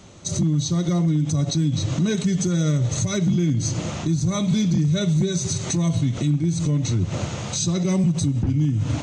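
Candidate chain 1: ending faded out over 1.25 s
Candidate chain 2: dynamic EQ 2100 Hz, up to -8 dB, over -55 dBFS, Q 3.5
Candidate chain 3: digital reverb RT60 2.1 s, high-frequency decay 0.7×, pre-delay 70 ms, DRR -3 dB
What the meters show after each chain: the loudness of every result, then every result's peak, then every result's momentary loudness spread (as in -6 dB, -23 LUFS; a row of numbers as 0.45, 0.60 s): -22.5, -22.0, -17.5 LUFS; -13.5, -13.5, -3.5 dBFS; 6, 4, 4 LU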